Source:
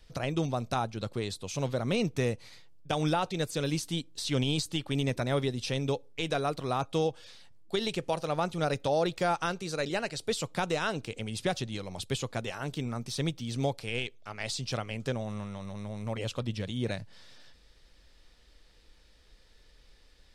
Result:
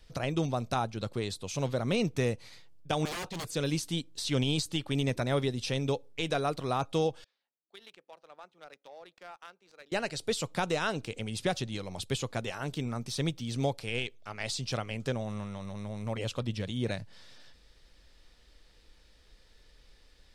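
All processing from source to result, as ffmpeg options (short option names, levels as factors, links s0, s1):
-filter_complex "[0:a]asettb=1/sr,asplit=3[s0][s1][s2];[s0]atrim=end=3.054[s3];[s1]atrim=start=3.05:end=3.51,asetpts=PTS-STARTPTS,afade=t=in:d=0.004:c=qsin,afade=t=out:st=0.456:d=0.004:c=qsin,agate=range=0.0224:threshold=0.01:ratio=3:release=100:detection=peak,aeval=exprs='0.0251*(abs(mod(val(0)/0.0251+3,4)-2)-1)':c=same[s4];[s2]atrim=start=3.506[s5];[s3][s4]acrossfade=d=0.004:c1=hsin:c2=qsin[s6];[s6][s5]acrossfade=d=0.004:c1=qsin:c2=hsin,asettb=1/sr,asplit=3[s7][s8][s9];[s7]atrim=end=7.244[s10];[s8]atrim=start=7.24:end=9.92,asetpts=PTS-STARTPTS,afade=t=in:d=0.004:c=qsin,afade=t=out:st=2.676:d=0.004:c=qsin,highpass=f=180:w=0.5412,highpass=f=180:w=1.3066,aderivative,adynamicsmooth=sensitivity=5.5:basefreq=1000[s11];[s9]atrim=start=9.916[s12];[s10][s11]acrossfade=d=0.004:c1=hsin:c2=qsin[s13];[s13][s12]acrossfade=d=0.004:c1=qsin:c2=hsin"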